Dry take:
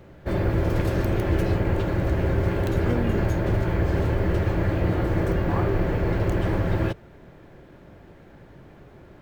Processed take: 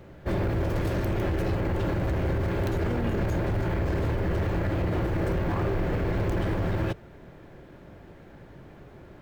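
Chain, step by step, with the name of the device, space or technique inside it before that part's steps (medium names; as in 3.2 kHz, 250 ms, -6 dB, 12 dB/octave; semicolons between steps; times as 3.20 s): limiter into clipper (peak limiter -16.5 dBFS, peak gain reduction 6 dB; hard clipper -22.5 dBFS, distortion -13 dB)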